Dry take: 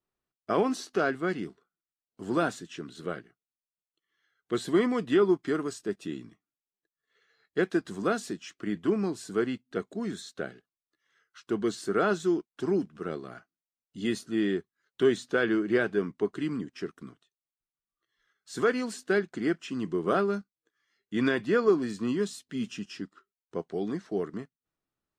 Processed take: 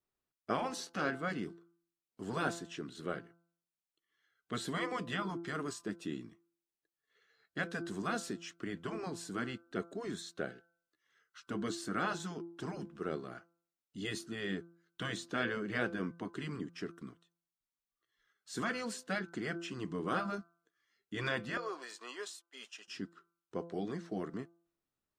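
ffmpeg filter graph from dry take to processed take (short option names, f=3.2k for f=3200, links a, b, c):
-filter_complex "[0:a]asettb=1/sr,asplit=3[a][b][c];[a]atrim=end=21.574[d];[b]atrim=start=21.57:end=22.88,asetpts=PTS-STARTPTS,afade=t=in:d=0.004:c=qsin,afade=t=out:st=1.306:d=0.004:c=qsin,agate=range=-33dB:threshold=-39dB:ratio=3:release=100:detection=peak,highpass=f=570:w=0.5412,highpass=f=570:w=1.3066,acompressor=threshold=-33dB:ratio=3:attack=3.2:release=140:knee=1:detection=peak[e];[c]atrim=start=22.876[f];[d][e]acrossfade=d=0.004:c1=hsin:c2=qsin[g];[g][f]acrossfade=d=0.004:c1=qsin:c2=hsin,bandreject=f=169.8:t=h:w=4,bandreject=f=339.6:t=h:w=4,bandreject=f=509.4:t=h:w=4,bandreject=f=679.2:t=h:w=4,bandreject=f=849:t=h:w=4,bandreject=f=1.0188k:t=h:w=4,bandreject=f=1.1886k:t=h:w=4,bandreject=f=1.3584k:t=h:w=4,bandreject=f=1.5282k:t=h:w=4,afftfilt=real='re*lt(hypot(re,im),0.251)':imag='im*lt(hypot(re,im),0.251)':win_size=1024:overlap=0.75,volume=-3dB"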